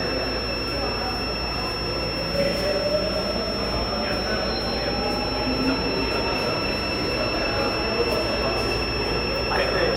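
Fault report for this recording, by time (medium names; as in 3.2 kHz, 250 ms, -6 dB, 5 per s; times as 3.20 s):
whine 5.4 kHz -29 dBFS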